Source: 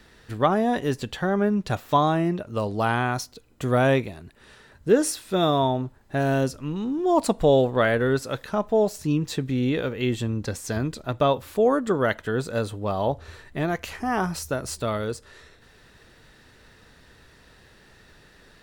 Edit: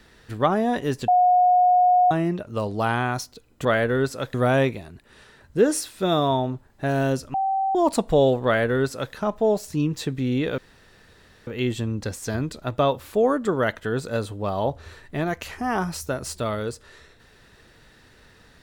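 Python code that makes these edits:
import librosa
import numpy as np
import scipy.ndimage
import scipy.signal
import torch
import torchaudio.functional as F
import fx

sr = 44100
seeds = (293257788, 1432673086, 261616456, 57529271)

y = fx.edit(x, sr, fx.bleep(start_s=1.08, length_s=1.03, hz=724.0, db=-13.5),
    fx.bleep(start_s=6.65, length_s=0.41, hz=774.0, db=-20.0),
    fx.duplicate(start_s=7.76, length_s=0.69, to_s=3.65),
    fx.insert_room_tone(at_s=9.89, length_s=0.89), tone=tone)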